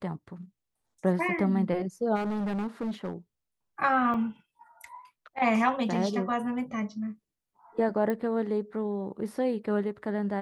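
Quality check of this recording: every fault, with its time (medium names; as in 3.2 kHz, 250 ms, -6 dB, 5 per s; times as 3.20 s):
2.15–3.13 s: clipped -28 dBFS
4.14 s: dropout 3.7 ms
8.10 s: pop -19 dBFS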